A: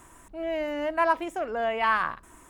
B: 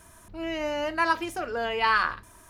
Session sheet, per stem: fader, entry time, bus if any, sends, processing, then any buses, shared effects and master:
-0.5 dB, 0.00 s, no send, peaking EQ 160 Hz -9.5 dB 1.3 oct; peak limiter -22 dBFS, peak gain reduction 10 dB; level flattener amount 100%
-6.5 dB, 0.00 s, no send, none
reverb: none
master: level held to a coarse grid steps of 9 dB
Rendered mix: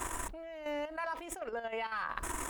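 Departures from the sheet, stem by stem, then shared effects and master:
stem A -0.5 dB -> -9.0 dB; stem B -6.5 dB -> -17.5 dB

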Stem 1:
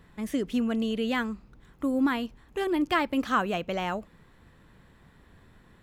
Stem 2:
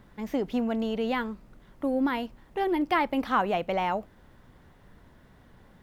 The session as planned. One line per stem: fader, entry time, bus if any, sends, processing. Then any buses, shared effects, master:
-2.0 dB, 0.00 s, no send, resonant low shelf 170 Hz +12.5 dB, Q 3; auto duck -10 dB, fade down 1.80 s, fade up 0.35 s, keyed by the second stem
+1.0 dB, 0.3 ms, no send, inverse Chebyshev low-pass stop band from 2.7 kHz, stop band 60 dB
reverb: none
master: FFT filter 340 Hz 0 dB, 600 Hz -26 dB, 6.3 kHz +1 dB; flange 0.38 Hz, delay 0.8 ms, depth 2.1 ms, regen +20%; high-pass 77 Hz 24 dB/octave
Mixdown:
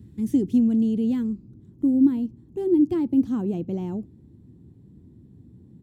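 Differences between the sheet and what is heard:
stem 2 +1.0 dB -> +9.0 dB; master: missing flange 0.38 Hz, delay 0.8 ms, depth 2.1 ms, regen +20%

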